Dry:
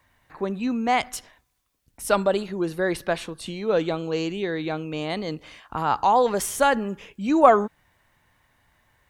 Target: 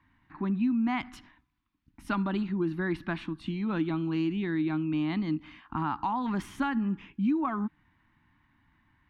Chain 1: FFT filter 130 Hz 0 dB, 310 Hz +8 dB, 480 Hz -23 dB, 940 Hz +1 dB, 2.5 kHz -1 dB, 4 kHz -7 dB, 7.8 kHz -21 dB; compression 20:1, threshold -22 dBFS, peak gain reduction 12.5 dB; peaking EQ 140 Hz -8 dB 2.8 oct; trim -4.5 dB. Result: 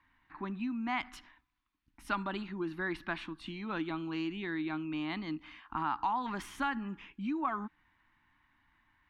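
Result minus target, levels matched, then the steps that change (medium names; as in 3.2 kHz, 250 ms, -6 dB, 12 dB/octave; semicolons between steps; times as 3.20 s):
125 Hz band -5.0 dB
change: peaking EQ 140 Hz +4 dB 2.8 oct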